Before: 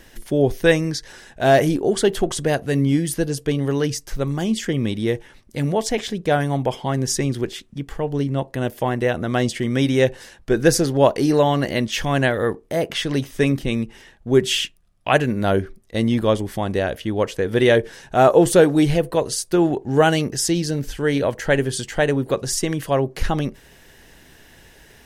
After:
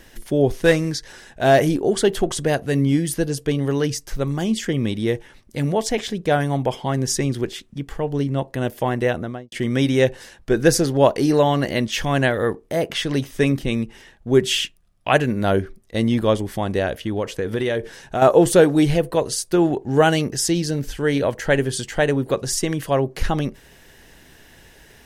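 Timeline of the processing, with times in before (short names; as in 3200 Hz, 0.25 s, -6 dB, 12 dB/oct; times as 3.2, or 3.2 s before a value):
0.52–0.94 CVSD 64 kbps
9.08–9.52 studio fade out
17.03–18.22 compressor, threshold -18 dBFS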